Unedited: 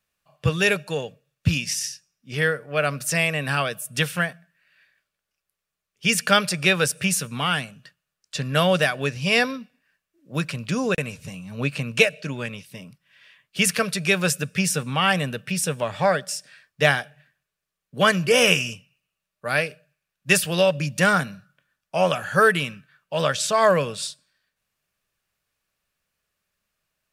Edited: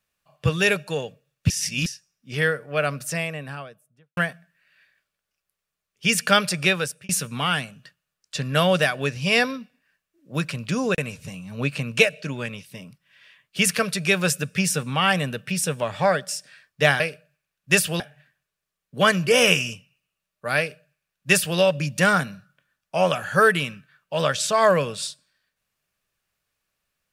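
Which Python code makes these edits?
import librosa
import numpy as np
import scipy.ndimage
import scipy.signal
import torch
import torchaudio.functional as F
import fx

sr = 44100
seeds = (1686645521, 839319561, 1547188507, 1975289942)

y = fx.studio_fade_out(x, sr, start_s=2.61, length_s=1.56)
y = fx.edit(y, sr, fx.reverse_span(start_s=1.5, length_s=0.36),
    fx.fade_out_span(start_s=6.63, length_s=0.46),
    fx.duplicate(start_s=19.58, length_s=1.0, to_s=17.0), tone=tone)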